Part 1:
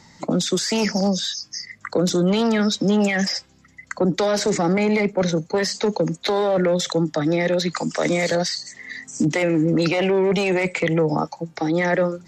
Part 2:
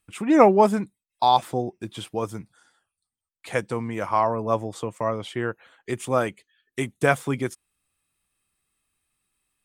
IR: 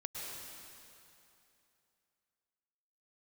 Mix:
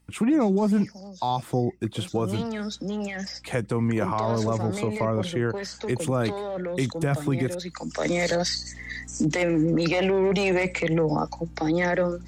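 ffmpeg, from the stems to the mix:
-filter_complex "[0:a]agate=range=-6dB:threshold=-49dB:ratio=16:detection=peak,aeval=exprs='val(0)+0.00891*(sin(2*PI*60*n/s)+sin(2*PI*2*60*n/s)/2+sin(2*PI*3*60*n/s)/3+sin(2*PI*4*60*n/s)/4+sin(2*PI*5*60*n/s)/5)':channel_layout=same,volume=-1.5dB,afade=type=in:start_time=2.11:duration=0.2:silence=0.316228,afade=type=in:start_time=7.76:duration=0.52:silence=0.298538[link_01];[1:a]lowshelf=frequency=390:gain=7.5,acrossover=split=240[link_02][link_03];[link_03]acompressor=threshold=-21dB:ratio=6[link_04];[link_02][link_04]amix=inputs=2:normalize=0,volume=1.5dB[link_05];[link_01][link_05]amix=inputs=2:normalize=0,alimiter=limit=-15dB:level=0:latency=1:release=61"

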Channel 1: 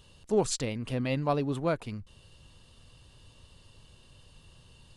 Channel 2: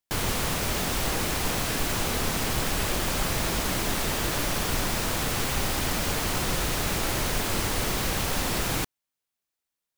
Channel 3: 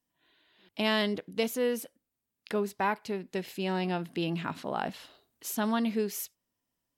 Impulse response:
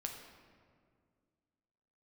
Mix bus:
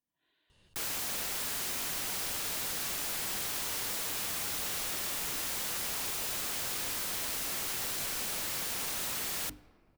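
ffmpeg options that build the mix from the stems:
-filter_complex "[0:a]adelay=500,volume=-10dB[link_01];[1:a]lowshelf=frequency=150:gain=-2,bandreject=frequency=50:width_type=h:width=6,bandreject=frequency=100:width_type=h:width=6,bandreject=frequency=150:width_type=h:width=6,bandreject=frequency=200:width_type=h:width=6,bandreject=frequency=250:width_type=h:width=6,bandreject=frequency=300:width_type=h:width=6,adelay=650,volume=-5dB,asplit=2[link_02][link_03];[link_03]volume=-17.5dB[link_04];[2:a]volume=-9.5dB[link_05];[3:a]atrim=start_sample=2205[link_06];[link_04][link_06]afir=irnorm=-1:irlink=0[link_07];[link_01][link_02][link_05][link_07]amix=inputs=4:normalize=0,aeval=exprs='(mod(33.5*val(0)+1,2)-1)/33.5':channel_layout=same"

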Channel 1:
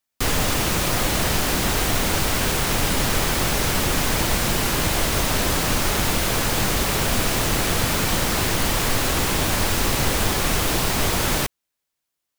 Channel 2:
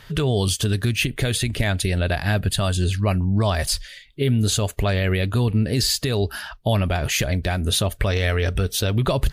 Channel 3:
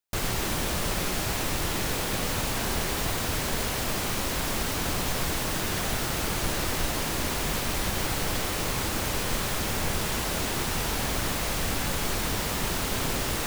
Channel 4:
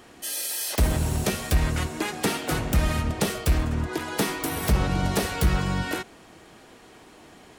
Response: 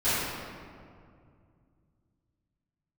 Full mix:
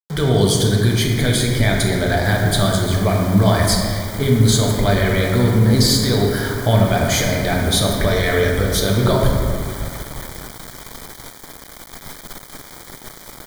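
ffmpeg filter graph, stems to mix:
-filter_complex "[0:a]equalizer=frequency=5500:width_type=o:width=0.82:gain=-14.5,asoftclip=type=tanh:threshold=-24dB,adelay=2050,volume=-5.5dB[link_01];[1:a]volume=1.5dB,asplit=2[link_02][link_03];[link_03]volume=-12dB[link_04];[2:a]aeval=exprs='(tanh(44.7*val(0)+0.3)-tanh(0.3))/44.7':channel_layout=same,adelay=300,volume=-5.5dB,asplit=2[link_05][link_06];[link_06]volume=-18.5dB[link_07];[4:a]atrim=start_sample=2205[link_08];[link_04][link_07]amix=inputs=2:normalize=0[link_09];[link_09][link_08]afir=irnorm=-1:irlink=0[link_10];[link_01][link_02][link_05][link_10]amix=inputs=4:normalize=0,equalizer=frequency=79:width=1.5:gain=-7.5,aeval=exprs='val(0)*gte(abs(val(0)),0.0398)':channel_layout=same,asuperstop=centerf=2700:order=8:qfactor=4.6"

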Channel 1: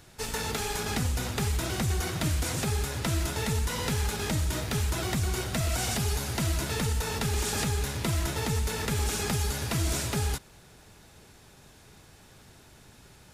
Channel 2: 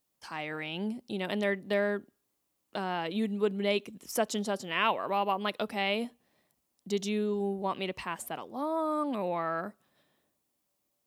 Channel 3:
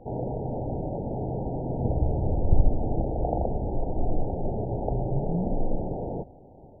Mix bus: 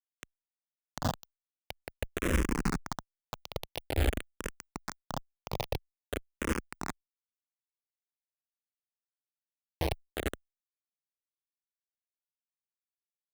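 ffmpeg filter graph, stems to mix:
ffmpeg -i stem1.wav -i stem2.wav -i stem3.wav -filter_complex "[0:a]lowpass=frequency=1700:width=0.5412,lowpass=frequency=1700:width=1.3066,tiltshelf=frequency=650:gain=5.5,volume=-5dB[link_01];[1:a]acrossover=split=360 3600:gain=0.0891 1 0.0891[link_02][link_03][link_04];[link_02][link_03][link_04]amix=inputs=3:normalize=0,alimiter=level_in=2.5dB:limit=-24dB:level=0:latency=1:release=27,volume=-2.5dB,volume=-9dB,asplit=2[link_05][link_06];[2:a]acompressor=threshold=-25dB:ratio=20,flanger=delay=3.4:depth=7:regen=-5:speed=0.5:shape=triangular,volume=-0.5dB[link_07];[link_06]apad=whole_len=588289[link_08];[link_01][link_08]sidechaincompress=threshold=-58dB:ratio=5:attack=16:release=156[link_09];[link_09][link_05][link_07]amix=inputs=3:normalize=0,acrusher=bits=3:mix=0:aa=0.000001,asplit=2[link_10][link_11];[link_11]afreqshift=-0.49[link_12];[link_10][link_12]amix=inputs=2:normalize=1" out.wav

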